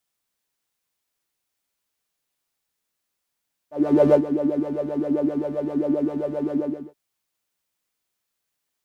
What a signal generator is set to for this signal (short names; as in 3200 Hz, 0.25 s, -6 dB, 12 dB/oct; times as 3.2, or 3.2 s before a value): synth patch with filter wobble D3, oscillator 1 saw, oscillator 2 saw, interval +12 st, oscillator 2 level -1.5 dB, noise -6.5 dB, filter bandpass, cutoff 340 Hz, Q 9, filter envelope 0.5 oct, attack 0.417 s, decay 0.09 s, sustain -13.5 dB, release 0.41 s, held 2.82 s, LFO 7.6 Hz, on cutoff 0.6 oct